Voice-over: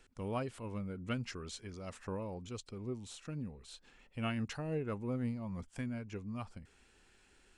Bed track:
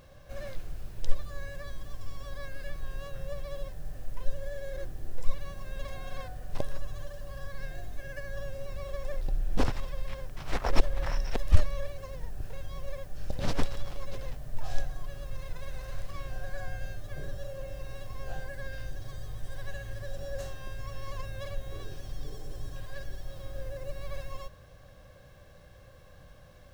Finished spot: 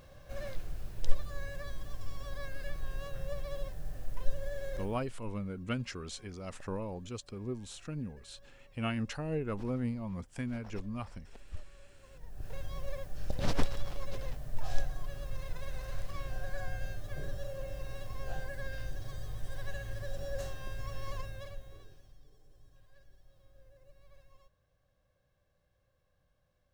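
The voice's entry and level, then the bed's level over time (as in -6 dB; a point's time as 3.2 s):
4.60 s, +2.5 dB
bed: 4.76 s -1 dB
5.26 s -23 dB
11.87 s -23 dB
12.54 s -1 dB
21.13 s -1 dB
22.25 s -22 dB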